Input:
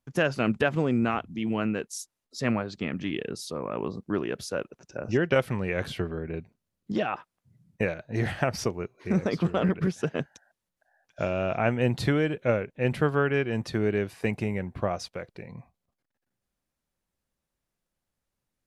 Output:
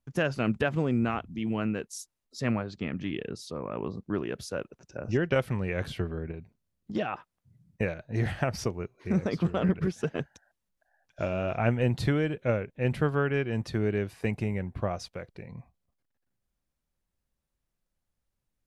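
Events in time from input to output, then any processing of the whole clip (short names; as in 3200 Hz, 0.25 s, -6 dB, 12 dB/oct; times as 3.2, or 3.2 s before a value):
2.61–4.26 high shelf 10000 Hz -10.5 dB
6.31–6.95 compressor, threshold -33 dBFS
9.69–11.84 phaser 1.5 Hz, delay 5 ms, feedback 29%
whole clip: low shelf 100 Hz +10 dB; gain -3.5 dB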